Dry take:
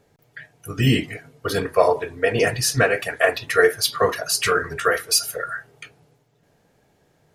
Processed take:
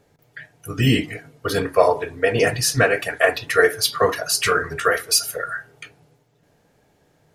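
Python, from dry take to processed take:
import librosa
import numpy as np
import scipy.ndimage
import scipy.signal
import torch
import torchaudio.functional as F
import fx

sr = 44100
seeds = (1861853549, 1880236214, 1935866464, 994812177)

y = fx.rev_fdn(x, sr, rt60_s=0.38, lf_ratio=1.0, hf_ratio=0.6, size_ms=20.0, drr_db=16.5)
y = F.gain(torch.from_numpy(y), 1.0).numpy()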